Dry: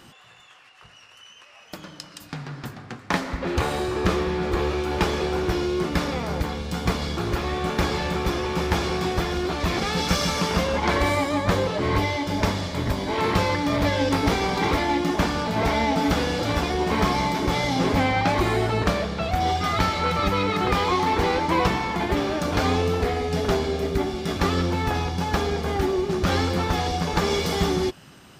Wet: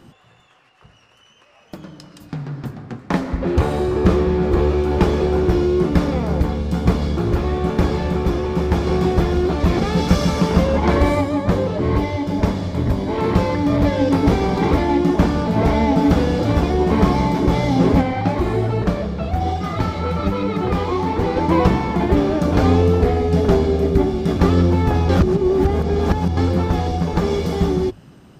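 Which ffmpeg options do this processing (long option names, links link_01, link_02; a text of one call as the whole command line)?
ffmpeg -i in.wav -filter_complex "[0:a]asettb=1/sr,asplit=3[link_01][link_02][link_03];[link_01]atrim=end=18.014[link_04];[link_02]atrim=start=18.01:end=21.37,asetpts=PTS-STARTPTS,afade=type=in:duration=0.004:curve=qsin,afade=type=out:start_time=3.356:duration=0.004:curve=qsin,flanger=delay=4.8:depth=9.9:regen=-45:speed=1.2:shape=triangular[link_05];[link_03]atrim=start=21.366[link_06];[link_04][link_05]acrossfade=duration=0.004:curve1=hsin:curve2=qsin[link_07];[link_07][link_06]acrossfade=duration=0.004:curve1=qsin:curve2=hsin,asplit=5[link_08][link_09][link_10][link_11][link_12];[link_08]atrim=end=8.872[link_13];[link_09]atrim=start=8.868:end=11.212,asetpts=PTS-STARTPTS,volume=3dB[link_14];[link_10]atrim=start=11.208:end=25.092[link_15];[link_11]atrim=start=25.088:end=26.372,asetpts=PTS-STARTPTS,areverse[link_16];[link_12]atrim=start=26.368[link_17];[link_13][link_14]acrossfade=duration=0.004:curve1=hsin:curve2=hsin[link_18];[link_18][link_15]acrossfade=duration=0.004:curve1=hsin:curve2=hsin[link_19];[link_19][link_16]acrossfade=duration=0.004:curve1=hsin:curve2=hsin[link_20];[link_20][link_17]acrossfade=duration=0.004:curve1=hsin:curve2=hsin,tiltshelf=frequency=790:gain=7,bandreject=frequency=50:width_type=h:width=6,bandreject=frequency=100:width_type=h:width=6,dynaudnorm=framelen=530:gausssize=11:maxgain=6.5dB" out.wav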